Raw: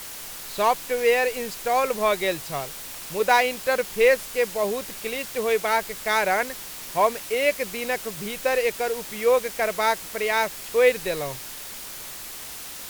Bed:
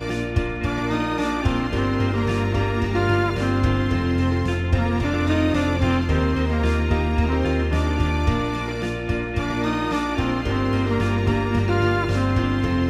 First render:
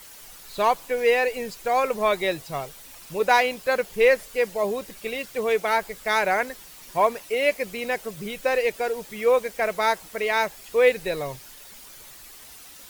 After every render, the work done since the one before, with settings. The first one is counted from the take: noise reduction 10 dB, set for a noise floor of -38 dBFS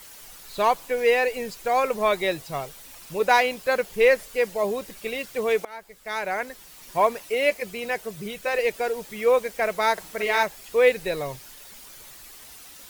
5.65–6.98 s: fade in, from -23 dB; 7.50–8.59 s: comb of notches 270 Hz; 9.93–10.43 s: doubling 48 ms -5 dB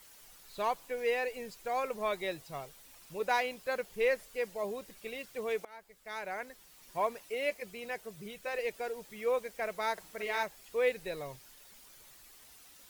trim -11.5 dB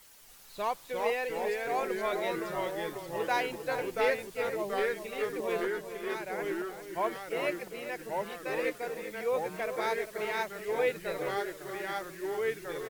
ever faster or slower copies 281 ms, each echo -2 st, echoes 3; echo from a far wall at 68 m, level -10 dB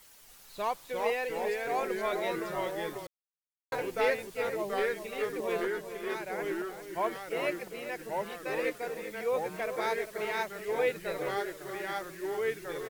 3.07–3.72 s: mute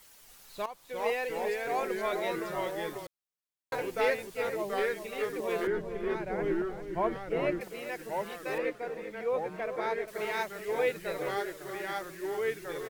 0.66–1.10 s: fade in, from -15.5 dB; 5.67–7.61 s: RIAA curve playback; 8.58–10.08 s: low-pass 2 kHz 6 dB/octave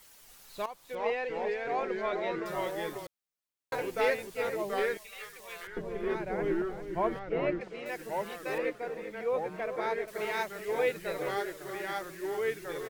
0.95–2.46 s: distance through air 160 m; 4.97–5.77 s: amplifier tone stack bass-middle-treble 10-0-10; 7.19–7.86 s: distance through air 130 m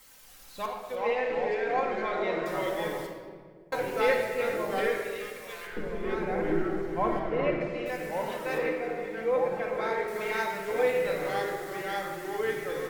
simulated room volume 2000 m³, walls mixed, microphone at 2.1 m

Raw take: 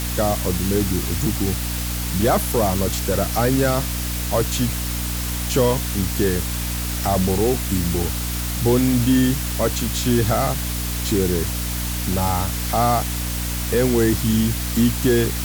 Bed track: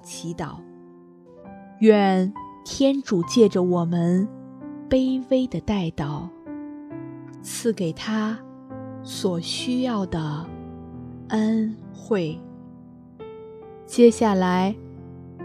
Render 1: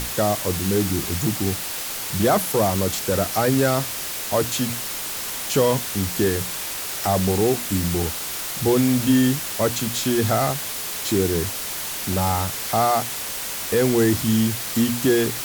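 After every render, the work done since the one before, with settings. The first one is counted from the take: hum notches 60/120/180/240/300 Hz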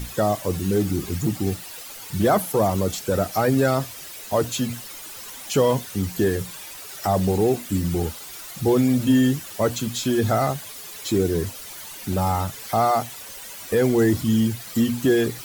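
noise reduction 12 dB, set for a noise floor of -30 dBFS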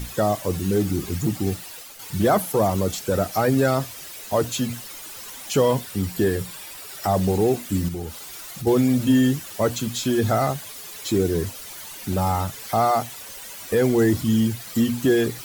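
1.55–1.99 s: fade out equal-power, to -6.5 dB; 5.68–7.08 s: band-stop 6.3 kHz; 7.88–8.67 s: compression 2:1, threshold -31 dBFS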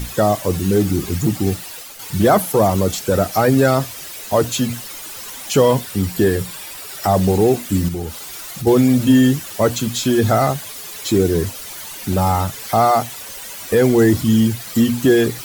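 trim +5.5 dB

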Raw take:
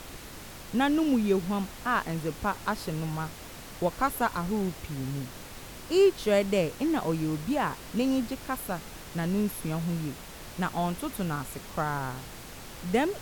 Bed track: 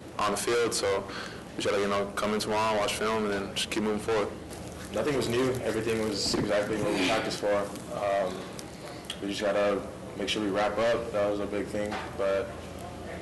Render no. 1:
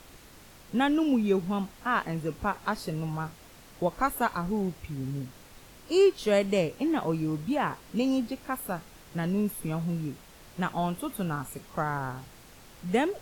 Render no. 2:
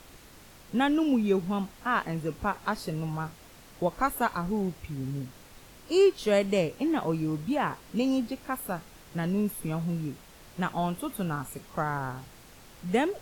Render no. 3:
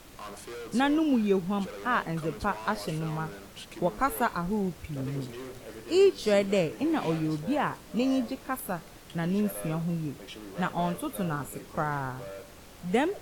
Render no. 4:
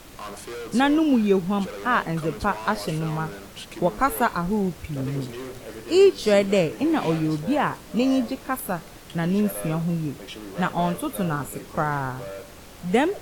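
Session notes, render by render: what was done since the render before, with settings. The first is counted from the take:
noise print and reduce 8 dB
no audible change
add bed track -14.5 dB
trim +5.5 dB

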